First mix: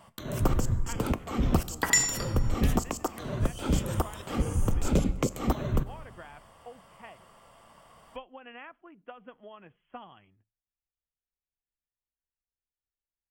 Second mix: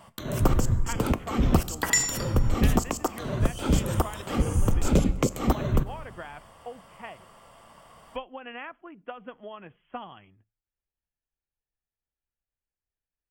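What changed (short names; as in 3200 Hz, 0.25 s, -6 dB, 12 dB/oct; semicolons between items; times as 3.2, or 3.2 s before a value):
speech +6.5 dB; first sound +3.5 dB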